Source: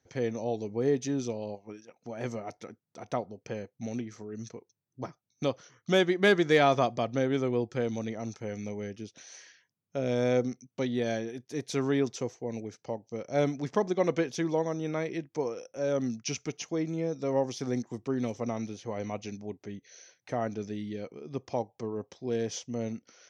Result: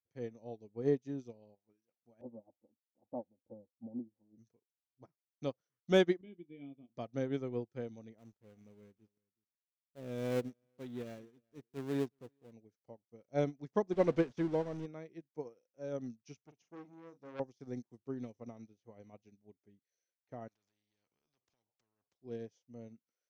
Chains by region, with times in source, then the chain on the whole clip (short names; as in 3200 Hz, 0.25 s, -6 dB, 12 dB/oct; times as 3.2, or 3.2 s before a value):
2.21–4.38 steep low-pass 980 Hz 72 dB/oct + comb 3.6 ms, depth 83%
6.21–6.97 vocal tract filter i + doubler 28 ms -11 dB
8.18–12.53 switching dead time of 0.23 ms + transient shaper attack -3 dB, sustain +1 dB + echo 0.373 s -19.5 dB
13.92–14.86 zero-crossing step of -30.5 dBFS + air absorption 100 m
16.4–17.4 doubler 40 ms -7 dB + core saturation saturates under 1700 Hz
20.48–22.14 compressor 2:1, threshold -41 dBFS + spectral compressor 4:1
whole clip: tilt shelf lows +3.5 dB, about 680 Hz; upward expander 2.5:1, over -41 dBFS; gain -2.5 dB